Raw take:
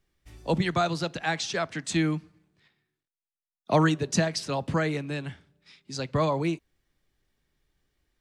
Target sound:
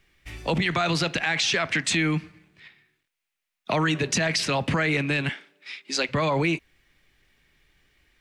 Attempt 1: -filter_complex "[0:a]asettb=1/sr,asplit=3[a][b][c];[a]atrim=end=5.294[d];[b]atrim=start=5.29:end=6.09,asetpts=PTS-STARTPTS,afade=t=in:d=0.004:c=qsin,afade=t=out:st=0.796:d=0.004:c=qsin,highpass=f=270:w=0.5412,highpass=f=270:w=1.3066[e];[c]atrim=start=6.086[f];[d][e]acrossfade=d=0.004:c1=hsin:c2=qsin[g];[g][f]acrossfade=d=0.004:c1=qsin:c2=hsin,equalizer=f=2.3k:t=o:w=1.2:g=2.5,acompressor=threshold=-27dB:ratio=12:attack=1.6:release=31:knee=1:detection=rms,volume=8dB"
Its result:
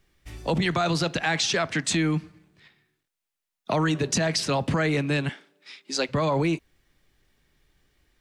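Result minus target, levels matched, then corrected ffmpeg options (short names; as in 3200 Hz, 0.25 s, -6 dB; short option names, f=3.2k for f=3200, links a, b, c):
2000 Hz band -3.0 dB
-filter_complex "[0:a]asettb=1/sr,asplit=3[a][b][c];[a]atrim=end=5.294[d];[b]atrim=start=5.29:end=6.09,asetpts=PTS-STARTPTS,afade=t=in:d=0.004:c=qsin,afade=t=out:st=0.796:d=0.004:c=qsin,highpass=f=270:w=0.5412,highpass=f=270:w=1.3066[e];[c]atrim=start=6.086[f];[d][e]acrossfade=d=0.004:c1=hsin:c2=qsin[g];[g][f]acrossfade=d=0.004:c1=qsin:c2=hsin,equalizer=f=2.3k:t=o:w=1.2:g=11.5,acompressor=threshold=-27dB:ratio=12:attack=1.6:release=31:knee=1:detection=rms,volume=8dB"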